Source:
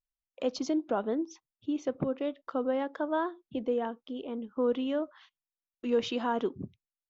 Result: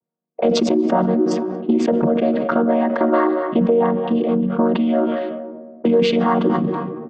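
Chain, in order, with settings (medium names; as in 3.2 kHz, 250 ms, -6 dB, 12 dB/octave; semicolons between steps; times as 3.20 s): vocoder on a held chord minor triad, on D#3; treble shelf 4.4 kHz -9 dB; on a send: feedback delay 232 ms, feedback 28%, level -20 dB; on the sum: Schroeder reverb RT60 1.9 s, combs from 32 ms, DRR 19 dB; compression 6:1, threshold -41 dBFS, peak gain reduction 18 dB; level-controlled noise filter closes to 520 Hz, open at -42.5 dBFS; bass shelf 280 Hz -11 dB; loudness maximiser +35 dB; decay stretcher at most 32 dB/s; trim -4.5 dB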